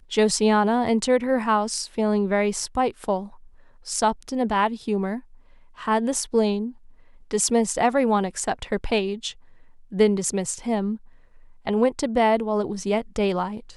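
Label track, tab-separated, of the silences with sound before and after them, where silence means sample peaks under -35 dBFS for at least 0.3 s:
3.270000	3.860000	silence
5.190000	5.790000	silence
6.710000	7.310000	silence
9.320000	9.920000	silence
10.960000	11.670000	silence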